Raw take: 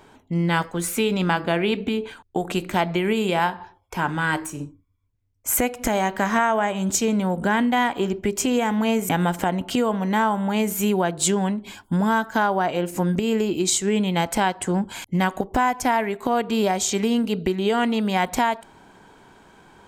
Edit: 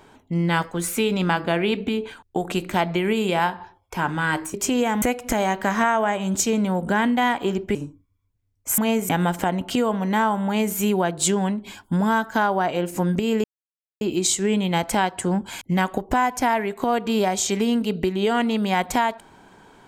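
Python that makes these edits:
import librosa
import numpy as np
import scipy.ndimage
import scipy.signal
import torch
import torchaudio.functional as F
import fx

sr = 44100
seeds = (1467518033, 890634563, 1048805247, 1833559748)

y = fx.edit(x, sr, fx.swap(start_s=4.54, length_s=1.03, other_s=8.3, other_length_s=0.48),
    fx.insert_silence(at_s=13.44, length_s=0.57), tone=tone)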